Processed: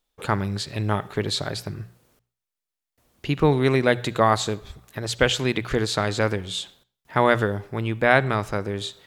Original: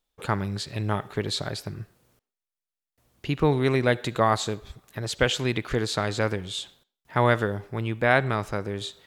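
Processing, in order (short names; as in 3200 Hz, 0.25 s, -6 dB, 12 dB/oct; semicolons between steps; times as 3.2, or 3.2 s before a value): notches 60/120/180 Hz; gain +3 dB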